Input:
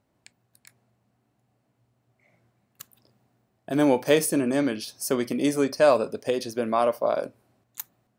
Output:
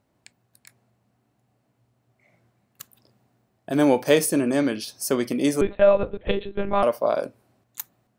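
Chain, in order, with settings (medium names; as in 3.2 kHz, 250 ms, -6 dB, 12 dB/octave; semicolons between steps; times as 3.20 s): 5.61–6.83 s: monotone LPC vocoder at 8 kHz 200 Hz; trim +2 dB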